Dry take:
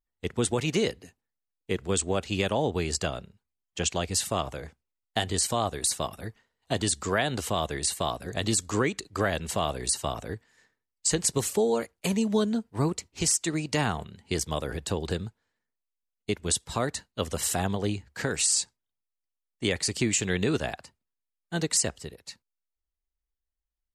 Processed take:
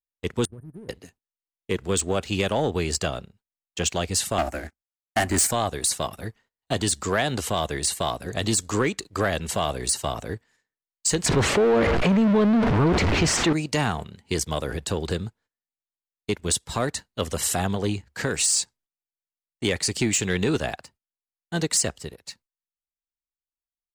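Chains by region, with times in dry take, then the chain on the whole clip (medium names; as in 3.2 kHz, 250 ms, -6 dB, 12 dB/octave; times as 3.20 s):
0.45–0.89 s: brick-wall FIR band-stop 1.8–8.6 kHz + amplifier tone stack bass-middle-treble 10-0-1
4.38–5.51 s: static phaser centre 690 Hz, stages 8 + waveshaping leveller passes 3 + upward expansion, over -40 dBFS
11.26–13.53 s: jump at every zero crossing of -28 dBFS + low-pass 2.3 kHz + level flattener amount 70%
whole clip: gate -58 dBFS, range -16 dB; waveshaping leveller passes 1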